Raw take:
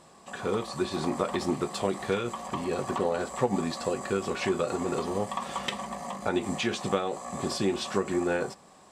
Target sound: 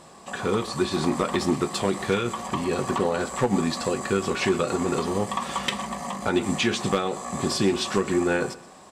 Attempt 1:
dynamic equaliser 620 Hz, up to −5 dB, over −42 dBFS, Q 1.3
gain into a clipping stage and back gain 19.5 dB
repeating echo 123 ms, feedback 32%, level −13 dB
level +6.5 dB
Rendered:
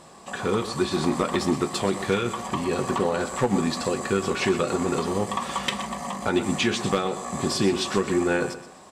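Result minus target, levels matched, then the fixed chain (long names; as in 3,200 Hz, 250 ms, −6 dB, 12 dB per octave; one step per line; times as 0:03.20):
echo-to-direct +6 dB
dynamic equaliser 620 Hz, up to −5 dB, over −42 dBFS, Q 1.3
gain into a clipping stage and back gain 19.5 dB
repeating echo 123 ms, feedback 32%, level −19 dB
level +6.5 dB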